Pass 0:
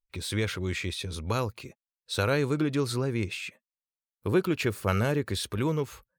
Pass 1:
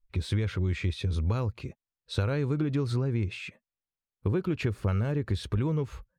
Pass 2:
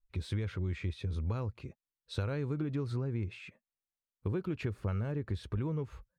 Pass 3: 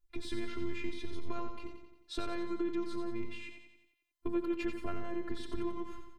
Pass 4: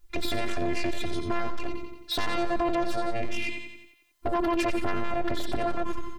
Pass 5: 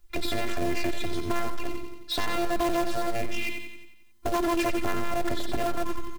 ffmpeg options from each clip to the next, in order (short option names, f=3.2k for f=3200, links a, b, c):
-af "aemphasis=mode=reproduction:type=bsi,acompressor=threshold=-24dB:ratio=6"
-af "adynamicequalizer=threshold=0.00251:dfrequency=2600:dqfactor=0.7:tfrequency=2600:tqfactor=0.7:attack=5:release=100:ratio=0.375:range=3:mode=cutabove:tftype=highshelf,volume=-6.5dB"
-af "afftfilt=real='hypot(re,im)*cos(PI*b)':imag='0':win_size=512:overlap=0.75,aecho=1:1:89|178|267|356|445|534|623:0.422|0.228|0.123|0.0664|0.0359|0.0194|0.0105,volume=5dB"
-filter_complex "[0:a]asplit=2[a][b];[b]alimiter=level_in=7.5dB:limit=-24dB:level=0:latency=1:release=19,volume=-7.5dB,volume=-0.5dB[c];[a][c]amix=inputs=2:normalize=0,aeval=exprs='0.126*sin(PI/2*3.98*val(0)/0.126)':c=same,volume=-4dB"
-filter_complex "[0:a]acrossover=split=320|3300[a][b][c];[a]aecho=1:1:258|516|774:0.0794|0.0373|0.0175[d];[b]acrusher=bits=2:mode=log:mix=0:aa=0.000001[e];[d][e][c]amix=inputs=3:normalize=0"